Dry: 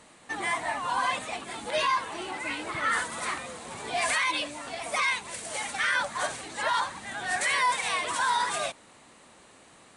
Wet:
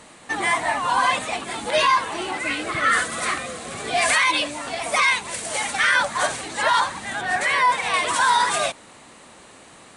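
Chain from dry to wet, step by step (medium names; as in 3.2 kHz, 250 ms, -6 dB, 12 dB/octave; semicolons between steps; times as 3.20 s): 2.38–4.10 s: Butterworth band-stop 920 Hz, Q 4.7; 7.21–7.94 s: treble shelf 3.8 kHz -11 dB; trim +8 dB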